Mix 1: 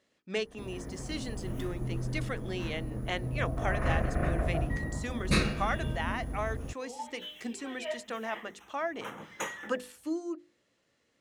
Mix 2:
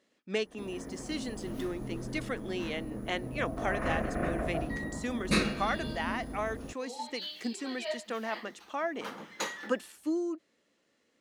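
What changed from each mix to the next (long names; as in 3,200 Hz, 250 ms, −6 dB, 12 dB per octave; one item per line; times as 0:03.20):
speech: remove mains-hum notches 50/100/150/200/250/300/350/400/450/500 Hz
second sound: remove Butterworth band-reject 4,500 Hz, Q 1.7
master: add low shelf with overshoot 160 Hz −7.5 dB, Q 1.5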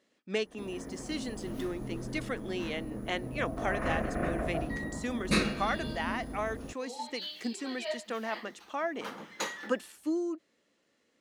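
nothing changed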